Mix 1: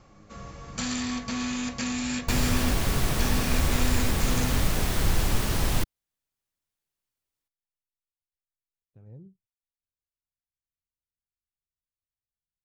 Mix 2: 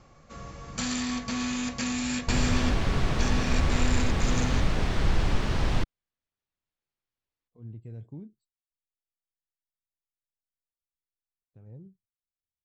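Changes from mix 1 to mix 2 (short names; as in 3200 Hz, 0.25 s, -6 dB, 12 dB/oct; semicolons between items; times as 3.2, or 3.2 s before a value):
speech: entry +2.60 s; second sound: add air absorption 140 m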